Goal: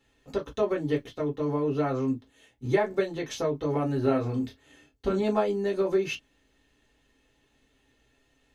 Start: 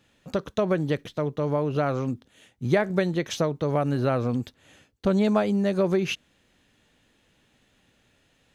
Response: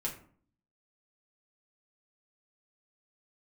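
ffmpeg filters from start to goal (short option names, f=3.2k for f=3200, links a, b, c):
-filter_complex "[0:a]asettb=1/sr,asplit=3[a][b][c];[a]atrim=end=4.014[d];[b]atrim=start=4.01:end=5.19,asetpts=PTS-STARTPTS,afade=t=in:d=0.004:c=qsin,afade=t=out:st=1.176:d=0.004:c=qsin,asplit=2[e][f];[f]adelay=27,volume=-5.5dB[g];[e][g]amix=inputs=2:normalize=0,atrim=end_sample=52038[h];[c]atrim=start=5.186[i];[d][h]acrossfade=d=0.004:c1=hsin:c2=qsin[j];[j][i]acrossfade=d=0.004:c1=qsin:c2=hsin[k];[1:a]atrim=start_sample=2205,atrim=end_sample=4410,asetrate=88200,aresample=44100[l];[k][l]afir=irnorm=-1:irlink=0"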